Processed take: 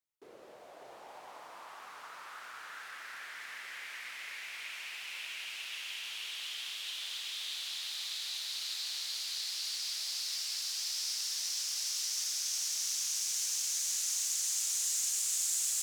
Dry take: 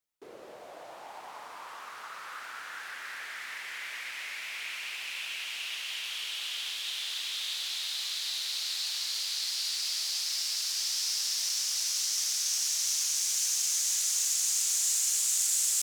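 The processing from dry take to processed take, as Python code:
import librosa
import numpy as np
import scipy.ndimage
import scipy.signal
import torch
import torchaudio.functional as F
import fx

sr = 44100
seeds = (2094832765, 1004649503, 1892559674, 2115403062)

y = x + 10.0 ** (-5.0 / 20.0) * np.pad(x, (int(596 * sr / 1000.0), 0))[:len(x)]
y = y * librosa.db_to_amplitude(-6.0)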